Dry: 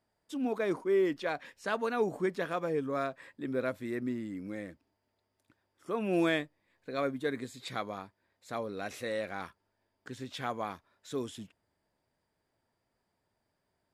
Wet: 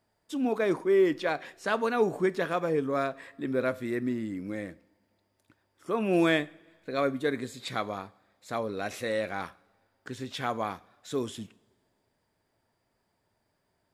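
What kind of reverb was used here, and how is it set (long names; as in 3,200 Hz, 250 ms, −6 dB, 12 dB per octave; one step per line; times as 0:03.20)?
coupled-rooms reverb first 0.45 s, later 1.9 s, from −18 dB, DRR 15.5 dB
level +4.5 dB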